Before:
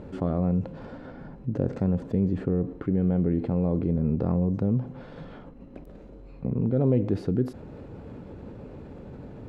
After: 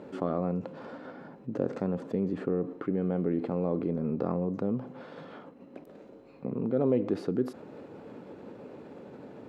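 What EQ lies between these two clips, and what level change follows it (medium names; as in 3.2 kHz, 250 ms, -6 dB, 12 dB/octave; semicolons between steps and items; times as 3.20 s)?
high-pass 260 Hz 12 dB/octave; dynamic bell 1.2 kHz, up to +5 dB, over -59 dBFS, Q 4.8; 0.0 dB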